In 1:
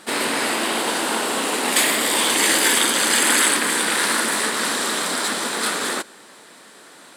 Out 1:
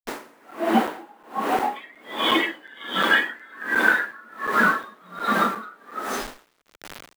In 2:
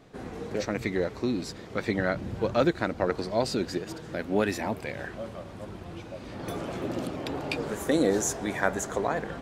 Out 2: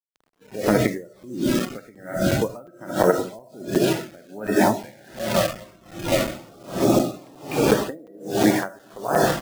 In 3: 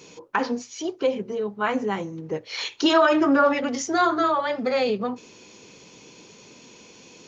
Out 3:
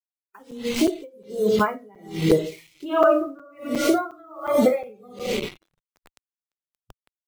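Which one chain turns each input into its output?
LPF 1600 Hz 12 dB/oct; feedback echo 0.432 s, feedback 32%, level -20 dB; dynamic EQ 120 Hz, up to +4 dB, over -50 dBFS, Q 3.7; AGC gain up to 10 dB; digital reverb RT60 0.85 s, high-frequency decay 1×, pre-delay 10 ms, DRR 4 dB; bit-crush 5-bit; compressor 10:1, threshold -20 dBFS; bell 76 Hz -13.5 dB 0.92 oct; spectral noise reduction 16 dB; crackling interface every 0.36 s, samples 256, zero, from 0.51; dB-linear tremolo 1.3 Hz, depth 32 dB; match loudness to -23 LUFS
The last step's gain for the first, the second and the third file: +17.0, +10.0, +8.5 dB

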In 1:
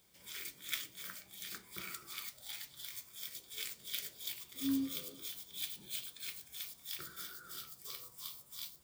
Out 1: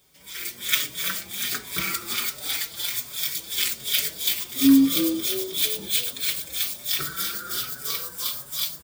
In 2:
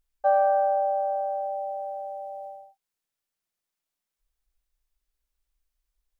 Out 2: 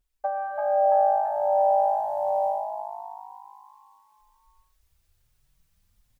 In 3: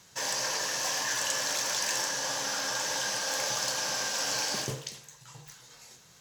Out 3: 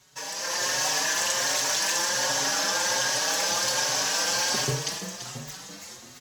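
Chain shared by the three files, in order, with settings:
compressor 10:1, threshold -30 dBFS; on a send: frequency-shifting echo 0.336 s, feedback 52%, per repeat +53 Hz, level -10 dB; on the sum: AGC gain up to 10.5 dB; endless flanger 5 ms +1.3 Hz; match loudness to -24 LUFS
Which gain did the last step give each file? +10.0, +4.0, +0.5 dB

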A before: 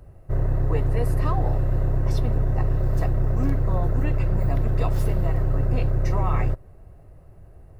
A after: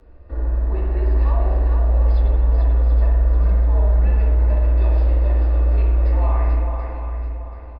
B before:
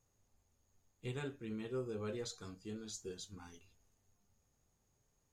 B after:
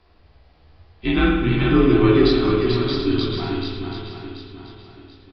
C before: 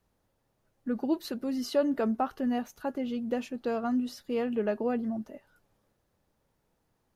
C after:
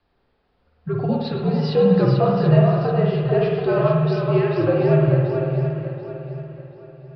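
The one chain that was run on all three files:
dynamic EQ 750 Hz, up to +5 dB, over -44 dBFS, Q 1.3; downsampling 11025 Hz; low shelf 460 Hz -4 dB; in parallel at +3 dB: negative-ratio compressor -29 dBFS, ratio -1; on the sum: frequency shift -91 Hz; flange 1.1 Hz, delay 9.7 ms, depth 9.9 ms, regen -34%; on a send: swung echo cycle 0.733 s, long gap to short 1.5:1, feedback 33%, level -5.5 dB; on the sum: harmonic-percussive split percussive -5 dB; spring tank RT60 1.1 s, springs 52 ms, chirp 70 ms, DRR 0.5 dB; match loudness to -19 LUFS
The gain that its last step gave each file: -3.0, +22.0, +6.0 dB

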